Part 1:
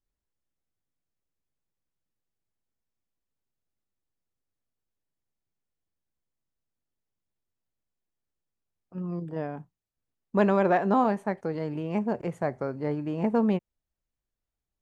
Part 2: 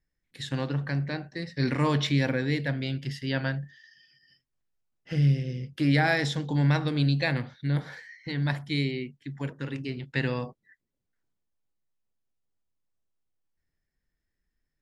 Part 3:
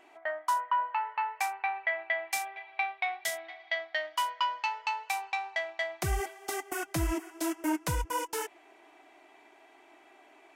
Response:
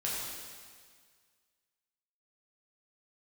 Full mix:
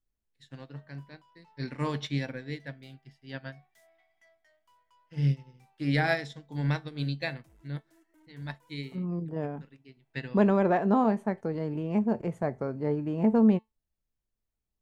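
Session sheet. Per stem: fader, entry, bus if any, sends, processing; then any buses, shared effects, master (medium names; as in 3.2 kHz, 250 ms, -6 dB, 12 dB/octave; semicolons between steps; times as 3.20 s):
+0.5 dB, 0.00 s, no send, none
+3.0 dB, 0.00 s, no send, bass shelf 450 Hz -6 dB; upward expansion 2.5:1, over -46 dBFS
-16.0 dB, 0.50 s, no send, saturation -33.5 dBFS, distortion -8 dB; auto duck -9 dB, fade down 1.15 s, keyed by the second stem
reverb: none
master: bass shelf 440 Hz +6.5 dB; feedback comb 220 Hz, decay 0.19 s, harmonics all, mix 50%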